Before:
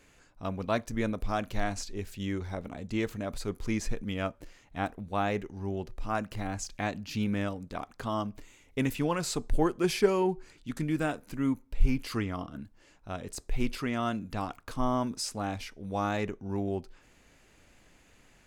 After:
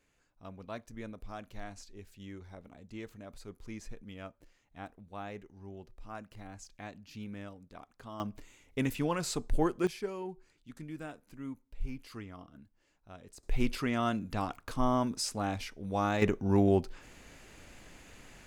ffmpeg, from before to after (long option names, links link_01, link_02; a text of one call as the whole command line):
ffmpeg -i in.wav -af "asetnsamples=nb_out_samples=441:pad=0,asendcmd='8.2 volume volume -2.5dB;9.87 volume volume -13dB;13.43 volume volume 0dB;16.22 volume volume 7dB',volume=-13dB" out.wav